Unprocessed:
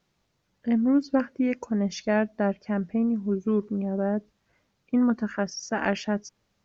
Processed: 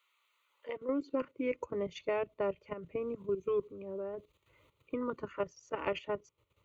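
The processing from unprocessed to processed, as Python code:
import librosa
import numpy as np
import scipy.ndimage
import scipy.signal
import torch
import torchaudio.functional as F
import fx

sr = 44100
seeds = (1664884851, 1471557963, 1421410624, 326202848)

y = fx.filter_sweep_highpass(x, sr, from_hz=1400.0, to_hz=67.0, start_s=0.43, end_s=1.56, q=1.4)
y = fx.level_steps(y, sr, step_db=12)
y = fx.fixed_phaser(y, sr, hz=1100.0, stages=8)
y = fx.band_squash(y, sr, depth_pct=40)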